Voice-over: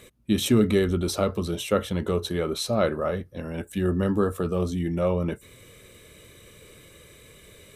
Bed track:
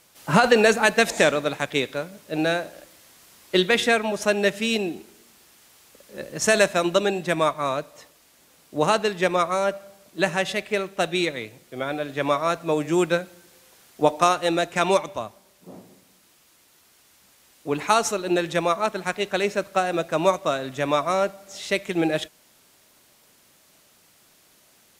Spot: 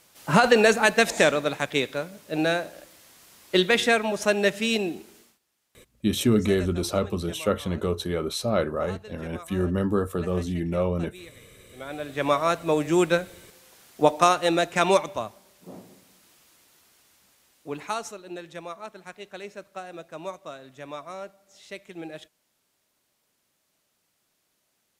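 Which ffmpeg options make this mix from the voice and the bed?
ffmpeg -i stem1.wav -i stem2.wav -filter_complex "[0:a]adelay=5750,volume=-1dB[link_01];[1:a]volume=20.5dB,afade=type=out:start_time=5.18:duration=0.21:silence=0.0944061,afade=type=in:start_time=11.68:duration=0.65:silence=0.0841395,afade=type=out:start_time=16.34:duration=1.87:silence=0.16788[link_02];[link_01][link_02]amix=inputs=2:normalize=0" out.wav

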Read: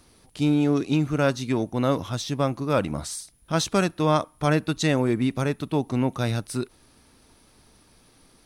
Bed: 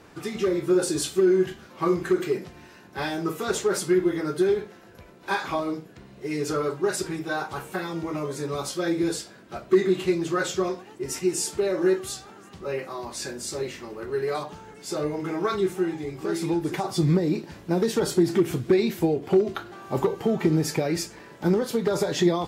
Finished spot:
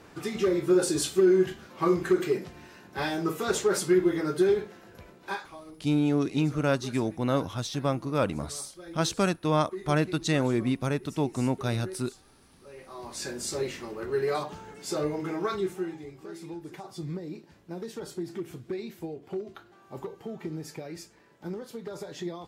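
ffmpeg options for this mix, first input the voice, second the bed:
ffmpeg -i stem1.wav -i stem2.wav -filter_complex "[0:a]adelay=5450,volume=-3.5dB[link_01];[1:a]volume=17dB,afade=type=out:start_time=5.09:duration=0.4:silence=0.133352,afade=type=in:start_time=12.75:duration=0.63:silence=0.125893,afade=type=out:start_time=14.84:duration=1.46:silence=0.199526[link_02];[link_01][link_02]amix=inputs=2:normalize=0" out.wav

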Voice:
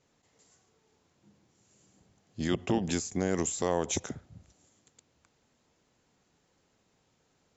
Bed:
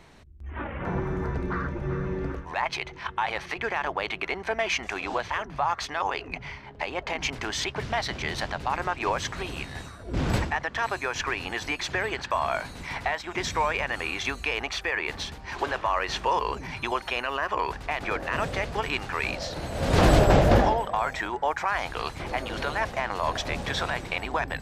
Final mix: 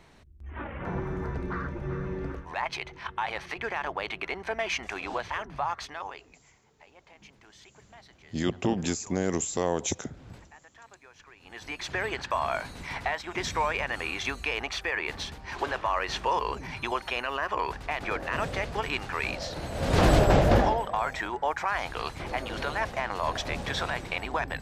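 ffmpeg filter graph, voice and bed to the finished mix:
ffmpeg -i stem1.wav -i stem2.wav -filter_complex "[0:a]adelay=5950,volume=1.5dB[link_01];[1:a]volume=19dB,afade=type=out:start_time=5.58:duration=0.78:silence=0.0891251,afade=type=in:start_time=11.4:duration=0.64:silence=0.0749894[link_02];[link_01][link_02]amix=inputs=2:normalize=0" out.wav

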